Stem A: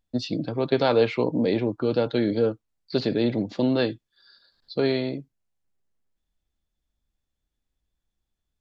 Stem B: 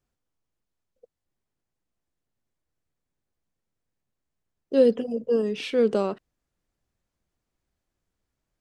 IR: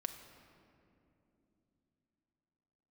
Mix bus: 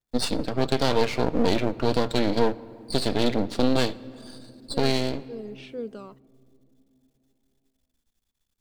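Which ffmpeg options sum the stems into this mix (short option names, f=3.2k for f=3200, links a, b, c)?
-filter_complex "[0:a]highshelf=f=2.7k:g=9.5,aeval=exprs='max(val(0),0)':c=same,volume=2dB,asplit=2[a][b];[b]volume=-7.5dB[c];[1:a]aphaser=in_gain=1:out_gain=1:delay=1:decay=0.49:speed=0.89:type=sinusoidal,volume=-16.5dB,asplit=2[d][e];[e]volume=-20dB[f];[2:a]atrim=start_sample=2205[g];[c][f]amix=inputs=2:normalize=0[h];[h][g]afir=irnorm=-1:irlink=0[i];[a][d][i]amix=inputs=3:normalize=0,alimiter=limit=-7.5dB:level=0:latency=1:release=392"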